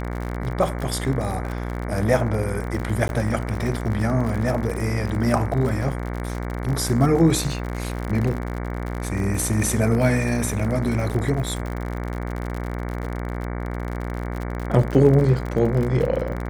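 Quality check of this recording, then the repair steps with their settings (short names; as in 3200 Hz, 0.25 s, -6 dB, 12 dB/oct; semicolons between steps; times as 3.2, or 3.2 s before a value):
buzz 60 Hz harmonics 38 -28 dBFS
crackle 56/s -27 dBFS
3.08–3.09 gap 11 ms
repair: de-click; de-hum 60 Hz, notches 38; interpolate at 3.08, 11 ms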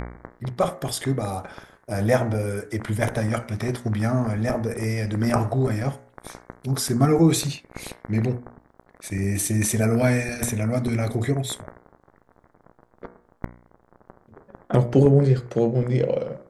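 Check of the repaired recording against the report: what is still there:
none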